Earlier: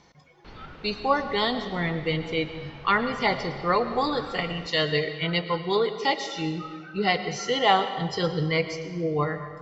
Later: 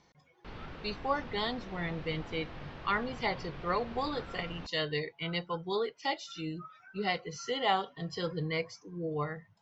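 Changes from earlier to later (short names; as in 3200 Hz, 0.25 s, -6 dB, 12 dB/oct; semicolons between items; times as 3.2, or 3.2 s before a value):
speech -5.5 dB; reverb: off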